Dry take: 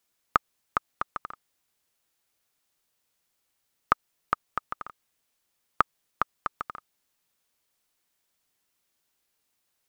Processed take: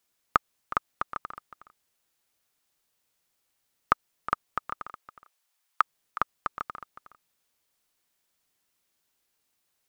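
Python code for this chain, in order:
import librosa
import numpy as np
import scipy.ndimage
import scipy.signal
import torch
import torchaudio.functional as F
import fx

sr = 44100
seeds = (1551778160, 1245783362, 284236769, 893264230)

y = fx.highpass(x, sr, hz=fx.line((4.87, 340.0), (5.81, 850.0)), slope=24, at=(4.87, 5.81), fade=0.02)
y = y + 10.0 ** (-14.5 / 20.0) * np.pad(y, (int(365 * sr / 1000.0), 0))[:len(y)]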